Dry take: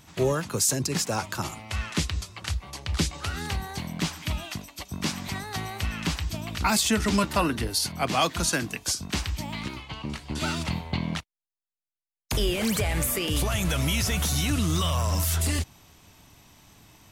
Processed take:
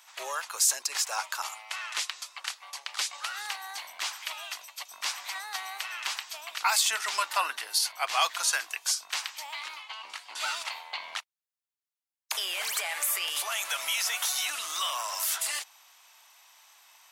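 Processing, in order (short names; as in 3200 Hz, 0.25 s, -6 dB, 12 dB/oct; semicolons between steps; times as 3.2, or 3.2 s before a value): HPF 810 Hz 24 dB/oct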